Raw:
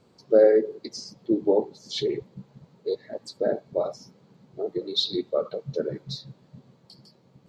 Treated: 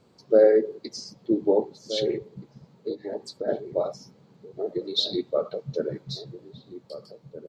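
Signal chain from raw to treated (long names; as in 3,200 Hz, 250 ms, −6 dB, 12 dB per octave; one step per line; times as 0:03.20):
0:02.17–0:03.48: downward compressor, threshold −29 dBFS, peak gain reduction 9 dB
slap from a distant wall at 270 metres, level −13 dB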